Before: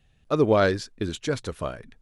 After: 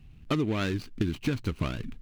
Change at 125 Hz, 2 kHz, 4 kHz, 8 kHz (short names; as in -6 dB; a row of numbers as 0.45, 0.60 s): 0.0, -6.0, -3.0, -8.0 dB